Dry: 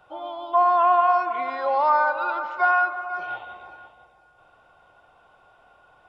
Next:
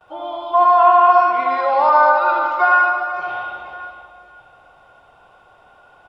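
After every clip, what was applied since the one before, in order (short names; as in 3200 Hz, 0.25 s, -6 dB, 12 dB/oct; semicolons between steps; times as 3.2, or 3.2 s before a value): on a send: reverse bouncing-ball echo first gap 80 ms, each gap 1.5×, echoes 5; on the sum: gate with hold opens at -52 dBFS; gain +4.5 dB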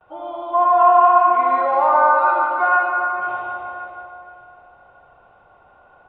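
air absorption 460 m; dark delay 0.149 s, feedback 63%, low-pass 1900 Hz, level -5 dB; gain -1 dB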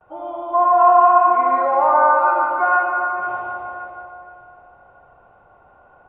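air absorption 500 m; gain +2.5 dB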